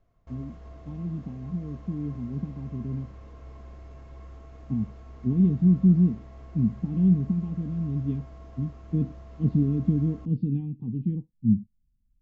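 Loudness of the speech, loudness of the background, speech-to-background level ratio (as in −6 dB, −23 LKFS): −27.0 LKFS, −46.5 LKFS, 19.5 dB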